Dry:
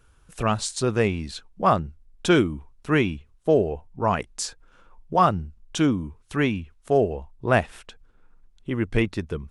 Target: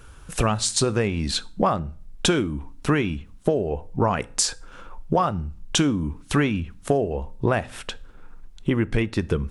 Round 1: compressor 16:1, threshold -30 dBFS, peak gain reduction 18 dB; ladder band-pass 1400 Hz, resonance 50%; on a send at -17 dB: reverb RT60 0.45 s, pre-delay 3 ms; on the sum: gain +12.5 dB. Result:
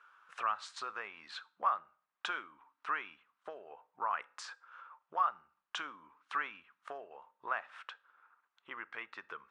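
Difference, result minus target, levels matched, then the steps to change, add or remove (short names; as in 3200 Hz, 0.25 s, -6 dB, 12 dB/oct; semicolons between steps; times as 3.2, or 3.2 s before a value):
1000 Hz band +7.0 dB
remove: ladder band-pass 1400 Hz, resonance 50%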